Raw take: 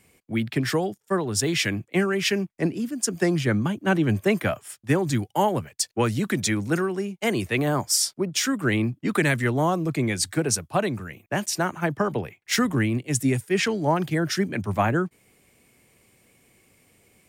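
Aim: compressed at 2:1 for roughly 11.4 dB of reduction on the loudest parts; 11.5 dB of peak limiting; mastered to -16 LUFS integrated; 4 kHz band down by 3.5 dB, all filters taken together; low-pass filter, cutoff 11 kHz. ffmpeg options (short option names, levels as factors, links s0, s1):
-af "lowpass=11000,equalizer=f=4000:t=o:g=-5,acompressor=threshold=0.0112:ratio=2,volume=15.8,alimiter=limit=0.422:level=0:latency=1"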